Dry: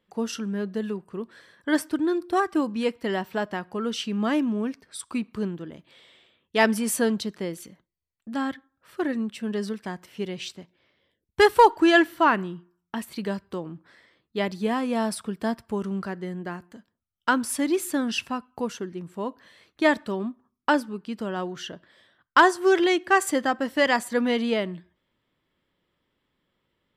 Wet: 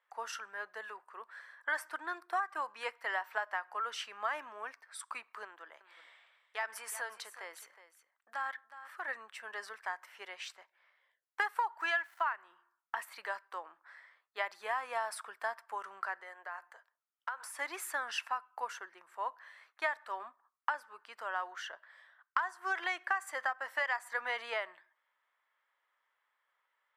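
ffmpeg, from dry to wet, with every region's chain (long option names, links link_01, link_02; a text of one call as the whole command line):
ffmpeg -i in.wav -filter_complex "[0:a]asettb=1/sr,asplit=3[link_01][link_02][link_03];[link_01]atrim=end=5.444[link_04];[link_02]atrim=start=5.44:end=9.08,asetpts=PTS-STARTPTS,afade=type=in:duration=0.004:curve=qsin,afade=type=out:start_time=3.636:duration=0.004:curve=qsin,equalizer=frequency=150:width=0.91:gain=-5.5,acompressor=threshold=-29dB:ratio=4:attack=3.2:release=140:knee=1:detection=peak,aecho=1:1:366:0.2,atrim=end_sample=160524[link_05];[link_03]atrim=start=9.076[link_06];[link_04][link_05]acrossfade=duration=0.004:curve1=hsin:curve2=qsin[link_07];[link_07][link_06]acrossfade=duration=0.004:curve1=qsin:curve2=hsin,asettb=1/sr,asplit=3[link_08][link_09][link_10];[link_08]atrim=end=11.804[link_11];[link_09]atrim=start=11.8:end=12.33,asetpts=PTS-STARTPTS,afade=type=in:duration=0.004:curve=qsin,afade=type=out:start_time=0.526:duration=0.004:curve=qsin,equalizer=frequency=2800:width=0.41:gain=6,aeval=exprs='val(0)*gte(abs(val(0)),0.00944)':channel_layout=same[link_12];[link_10]atrim=start=12.326[link_13];[link_11][link_12]acrossfade=duration=0.004:curve1=hsin:curve2=qsin[link_14];[link_14][link_13]acrossfade=duration=0.004:curve1=qsin:curve2=hsin,asettb=1/sr,asplit=3[link_15][link_16][link_17];[link_15]atrim=end=16.204[link_18];[link_16]atrim=start=16.2:end=17.59,asetpts=PTS-STARTPTS,afade=type=in:duration=0.004:curve=qsin,afade=type=out:start_time=1.386:duration=0.004:curve=qsin,lowshelf=frequency=320:width_type=q:width=1.5:gain=-13.5,acompressor=threshold=-34dB:ratio=10:attack=3.2:release=140:knee=1:detection=peak[link_19];[link_17]atrim=start=17.586[link_20];[link_18][link_19]acrossfade=duration=0.004:curve1=hsin:curve2=qsin[link_21];[link_21][link_20]acrossfade=duration=0.004:curve1=qsin:curve2=hsin,highpass=frequency=790:width=0.5412,highpass=frequency=790:width=1.3066,highshelf=frequency=2400:width_type=q:width=1.5:gain=-8.5,acompressor=threshold=-30dB:ratio=12" out.wav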